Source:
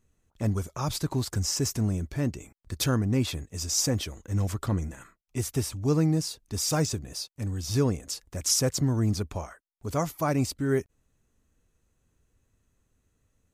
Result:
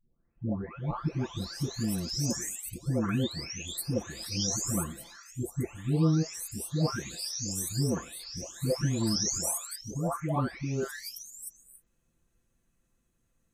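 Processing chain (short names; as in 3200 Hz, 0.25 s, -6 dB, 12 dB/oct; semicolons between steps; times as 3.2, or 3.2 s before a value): spectral delay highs late, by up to 0.977 s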